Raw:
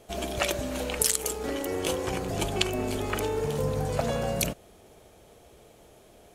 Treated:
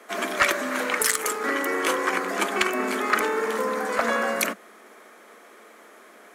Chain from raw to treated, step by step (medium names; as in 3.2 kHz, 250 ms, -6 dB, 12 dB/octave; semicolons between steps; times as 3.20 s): steep high-pass 200 Hz 96 dB/octave; high-order bell 1.5 kHz +13.5 dB 1.3 oct; saturation -12.5 dBFS, distortion -14 dB; trim +3 dB